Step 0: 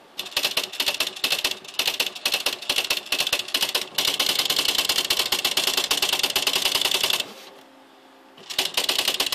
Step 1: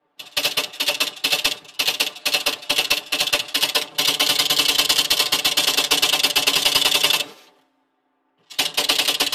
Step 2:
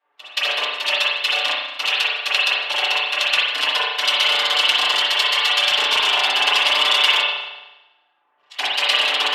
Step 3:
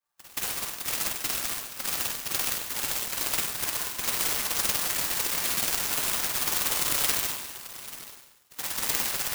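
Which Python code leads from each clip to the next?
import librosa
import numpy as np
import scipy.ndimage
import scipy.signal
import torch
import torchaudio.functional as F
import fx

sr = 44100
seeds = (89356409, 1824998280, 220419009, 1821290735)

y1 = x + 0.98 * np.pad(x, (int(6.8 * sr / 1000.0), 0))[:len(x)]
y1 = fx.band_widen(y1, sr, depth_pct=100)
y1 = y1 * 10.0 ** (1.0 / 20.0)
y2 = fx.peak_eq(y1, sr, hz=180.0, db=-14.0, octaves=2.2)
y2 = fx.filter_lfo_bandpass(y2, sr, shape='saw_down', hz=8.1, low_hz=730.0, high_hz=2400.0, q=0.7)
y2 = fx.rev_spring(y2, sr, rt60_s=1.0, pass_ms=(36,), chirp_ms=55, drr_db=-6.0)
y2 = y2 * 10.0 ** (1.0 / 20.0)
y3 = scipy.signal.sosfilt(scipy.signal.butter(2, 1500.0, 'highpass', fs=sr, output='sos'), y2)
y3 = y3 + 10.0 ** (-15.0 / 20.0) * np.pad(y3, (int(839 * sr / 1000.0), 0))[:len(y3)]
y3 = fx.clock_jitter(y3, sr, seeds[0], jitter_ms=0.12)
y3 = y3 * 10.0 ** (-9.0 / 20.0)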